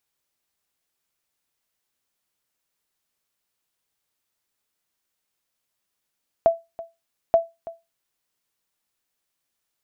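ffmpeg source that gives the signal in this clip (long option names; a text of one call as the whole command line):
ffmpeg -f lavfi -i "aevalsrc='0.398*(sin(2*PI*667*mod(t,0.88))*exp(-6.91*mod(t,0.88)/0.22)+0.119*sin(2*PI*667*max(mod(t,0.88)-0.33,0))*exp(-6.91*max(mod(t,0.88)-0.33,0)/0.22))':duration=1.76:sample_rate=44100" out.wav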